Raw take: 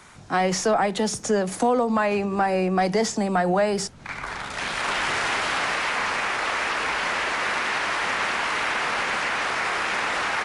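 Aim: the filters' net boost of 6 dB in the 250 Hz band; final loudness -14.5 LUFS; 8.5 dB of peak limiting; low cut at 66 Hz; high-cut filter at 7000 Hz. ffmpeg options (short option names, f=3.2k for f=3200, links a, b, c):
-af "highpass=66,lowpass=7k,equalizer=f=250:t=o:g=8,volume=9.5dB,alimiter=limit=-5.5dB:level=0:latency=1"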